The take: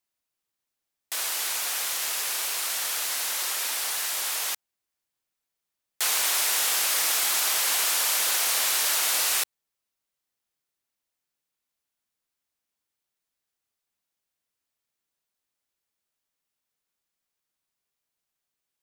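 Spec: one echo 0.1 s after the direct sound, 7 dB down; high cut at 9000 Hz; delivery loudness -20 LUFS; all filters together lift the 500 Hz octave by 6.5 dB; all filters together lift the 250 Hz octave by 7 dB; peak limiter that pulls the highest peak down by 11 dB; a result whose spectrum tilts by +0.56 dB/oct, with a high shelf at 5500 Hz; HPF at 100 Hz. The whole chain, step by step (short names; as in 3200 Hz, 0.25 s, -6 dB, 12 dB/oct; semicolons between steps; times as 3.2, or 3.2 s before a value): HPF 100 Hz; LPF 9000 Hz; bell 250 Hz +6.5 dB; bell 500 Hz +7 dB; high shelf 5500 Hz -4 dB; limiter -26 dBFS; echo 0.1 s -7 dB; gain +12.5 dB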